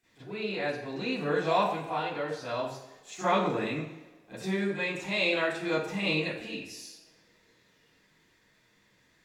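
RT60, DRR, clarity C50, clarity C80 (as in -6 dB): 1.3 s, -13.0 dB, 2.0 dB, 6.0 dB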